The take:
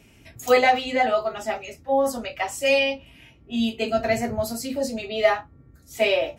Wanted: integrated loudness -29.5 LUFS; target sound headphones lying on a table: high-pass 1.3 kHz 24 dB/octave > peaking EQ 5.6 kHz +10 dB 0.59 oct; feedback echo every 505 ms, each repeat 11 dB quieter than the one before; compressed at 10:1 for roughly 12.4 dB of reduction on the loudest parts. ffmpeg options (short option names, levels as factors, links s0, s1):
-af "acompressor=threshold=0.0562:ratio=10,highpass=f=1300:w=0.5412,highpass=f=1300:w=1.3066,equalizer=f=5600:t=o:w=0.59:g=10,aecho=1:1:505|1010|1515:0.282|0.0789|0.0221,volume=1.68"